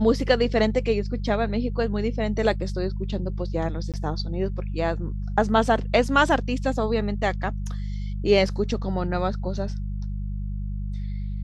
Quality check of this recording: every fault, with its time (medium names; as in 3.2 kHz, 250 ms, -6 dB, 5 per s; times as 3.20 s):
hum 50 Hz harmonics 4 -29 dBFS
3.92–3.94 s: dropout 17 ms